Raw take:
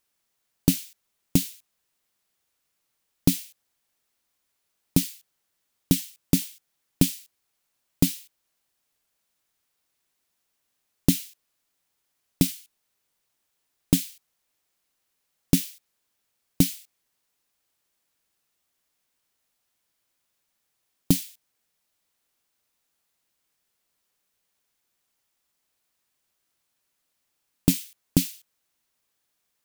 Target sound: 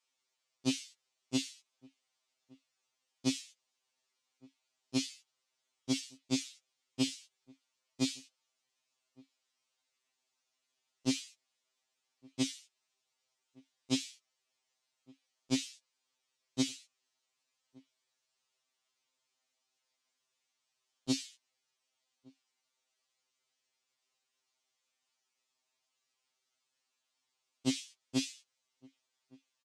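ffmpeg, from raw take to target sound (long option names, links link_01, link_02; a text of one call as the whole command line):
ffmpeg -i in.wav -filter_complex "[0:a]lowpass=frequency=7500:width=0.5412,lowpass=frequency=7500:width=1.3066,acrossover=split=5400[link_01][link_02];[link_02]acompressor=threshold=-39dB:ratio=4:attack=1:release=60[link_03];[link_01][link_03]amix=inputs=2:normalize=0,highpass=frequency=670:poles=1,equalizer=frequency=1600:width=2.7:gain=-5,asplit=2[link_04][link_05];[link_05]adelay=1166,volume=-26dB,highshelf=frequency=4000:gain=-26.2[link_06];[link_04][link_06]amix=inputs=2:normalize=0,afftfilt=real='re*2.45*eq(mod(b,6),0)':imag='im*2.45*eq(mod(b,6),0)':win_size=2048:overlap=0.75" out.wav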